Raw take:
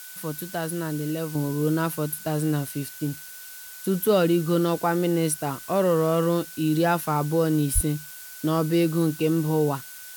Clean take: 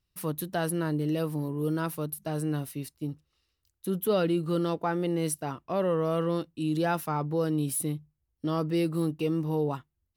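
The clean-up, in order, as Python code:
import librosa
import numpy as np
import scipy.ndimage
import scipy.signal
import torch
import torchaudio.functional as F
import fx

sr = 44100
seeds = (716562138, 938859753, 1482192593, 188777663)

y = fx.notch(x, sr, hz=1500.0, q=30.0)
y = fx.highpass(y, sr, hz=140.0, slope=24, at=(7.74, 7.86), fade=0.02)
y = fx.noise_reduce(y, sr, print_start_s=3.26, print_end_s=3.76, reduce_db=30.0)
y = fx.fix_level(y, sr, at_s=1.35, step_db=-5.5)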